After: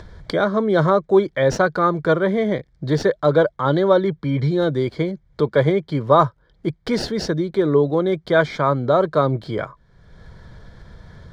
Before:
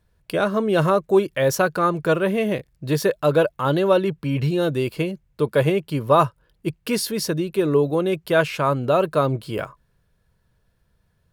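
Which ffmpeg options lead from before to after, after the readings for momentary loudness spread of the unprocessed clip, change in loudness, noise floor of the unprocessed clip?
9 LU, +2.0 dB, -67 dBFS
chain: -filter_complex "[0:a]asuperstop=centerf=2700:order=12:qfactor=4,acrossover=split=220|6600[a][b][c];[c]acrusher=samples=39:mix=1:aa=0.000001[d];[a][b][d]amix=inputs=3:normalize=0,highshelf=f=11k:g=-10.5,acompressor=mode=upward:threshold=-24dB:ratio=2.5,volume=2dB"

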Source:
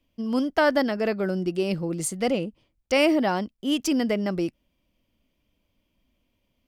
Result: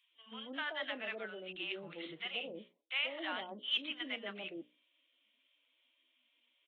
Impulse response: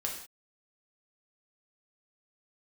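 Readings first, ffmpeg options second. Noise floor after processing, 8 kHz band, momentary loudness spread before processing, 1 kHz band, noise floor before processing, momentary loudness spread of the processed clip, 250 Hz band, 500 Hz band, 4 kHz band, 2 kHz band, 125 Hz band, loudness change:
-77 dBFS, under -40 dB, 7 LU, -17.0 dB, -74 dBFS, 12 LU, -24.5 dB, -21.0 dB, -4.5 dB, -9.0 dB, -27.5 dB, -14.5 dB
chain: -filter_complex "[0:a]aresample=8000,aresample=44100,areverse,acompressor=threshold=-29dB:ratio=16,areverse,aderivative,bandreject=f=60:t=h:w=6,bandreject=f=120:t=h:w=6,bandreject=f=180:t=h:w=6,bandreject=f=240:t=h:w=6,bandreject=f=300:t=h:w=6,bandreject=f=360:t=h:w=6,bandreject=f=420:t=h:w=6,bandreject=f=480:t=h:w=6,bandreject=f=540:t=h:w=6,bandreject=f=600:t=h:w=6,acrossover=split=160|780[a][b][c];[a]adelay=80[d];[b]adelay=130[e];[d][e][c]amix=inputs=3:normalize=0,volume=14dB" -ar 48000 -c:a libvorbis -b:a 32k

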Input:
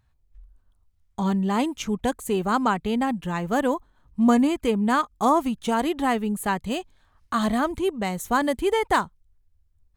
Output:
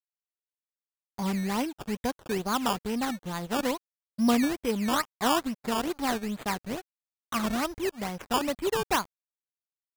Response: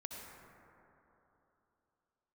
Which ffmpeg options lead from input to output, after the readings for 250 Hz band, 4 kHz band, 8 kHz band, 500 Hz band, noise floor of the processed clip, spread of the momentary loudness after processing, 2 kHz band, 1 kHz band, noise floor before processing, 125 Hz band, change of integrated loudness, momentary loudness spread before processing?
-6.0 dB, +1.0 dB, +0.5 dB, -6.0 dB, under -85 dBFS, 8 LU, -4.5 dB, -6.0 dB, -66 dBFS, -6.0 dB, -5.5 dB, 7 LU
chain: -af "acrusher=samples=15:mix=1:aa=0.000001:lfo=1:lforange=15:lforate=2.3,aeval=exprs='sgn(val(0))*max(abs(val(0))-0.0133,0)':c=same,volume=-4.5dB"

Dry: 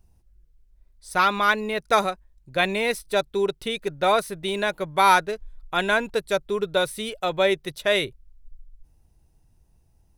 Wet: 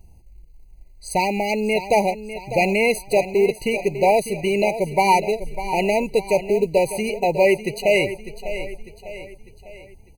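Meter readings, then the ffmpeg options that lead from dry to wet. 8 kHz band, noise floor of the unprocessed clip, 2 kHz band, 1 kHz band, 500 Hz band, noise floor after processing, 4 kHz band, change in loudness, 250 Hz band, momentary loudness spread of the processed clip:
+4.0 dB, -61 dBFS, 0.0 dB, +1.5 dB, +6.0 dB, -47 dBFS, -3.5 dB, +3.0 dB, +6.5 dB, 13 LU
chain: -filter_complex "[0:a]bandreject=f=1.3k:w=12,asplit=2[a][b];[b]acompressor=threshold=-34dB:ratio=5,volume=-0.5dB[c];[a][c]amix=inputs=2:normalize=0,asoftclip=type=tanh:threshold=-11.5dB,acrusher=bits=7:mode=log:mix=0:aa=0.000001,asplit=2[d][e];[e]aecho=0:1:600|1200|1800|2400|3000:0.251|0.116|0.0532|0.0244|0.0112[f];[d][f]amix=inputs=2:normalize=0,afftfilt=real='re*eq(mod(floor(b*sr/1024/990),2),0)':imag='im*eq(mod(floor(b*sr/1024/990),2),0)':win_size=1024:overlap=0.75,volume=5dB"

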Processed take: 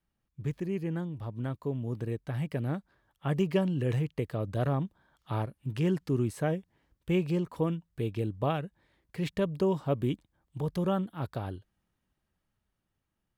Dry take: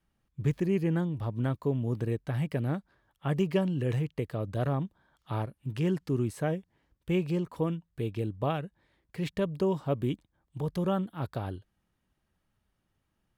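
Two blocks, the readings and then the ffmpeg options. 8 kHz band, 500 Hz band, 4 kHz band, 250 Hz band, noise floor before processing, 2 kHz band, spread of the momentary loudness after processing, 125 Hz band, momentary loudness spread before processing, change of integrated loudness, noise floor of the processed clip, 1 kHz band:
0.0 dB, -0.5 dB, 0.0 dB, -0.5 dB, -79 dBFS, -0.5 dB, 10 LU, -1.0 dB, 9 LU, -0.5 dB, -82 dBFS, 0.0 dB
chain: -af "dynaudnorm=f=720:g=7:m=6dB,volume=-5.5dB"

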